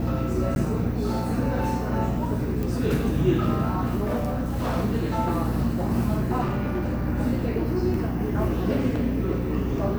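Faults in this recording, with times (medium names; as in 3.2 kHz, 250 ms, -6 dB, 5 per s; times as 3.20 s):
hum 60 Hz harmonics 5 -29 dBFS
0.55–0.56 s: dropout 11 ms
2.63 s: pop
4.03–4.77 s: clipped -21.5 dBFS
6.43–7.07 s: clipped -21.5 dBFS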